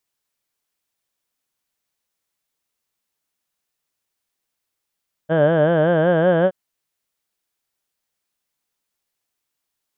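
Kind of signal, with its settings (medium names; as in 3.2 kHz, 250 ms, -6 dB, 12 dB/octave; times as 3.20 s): formant vowel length 1.22 s, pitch 153 Hz, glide +2.5 st, vibrato depth 1.2 st, F1 580 Hz, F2 1.6 kHz, F3 3.1 kHz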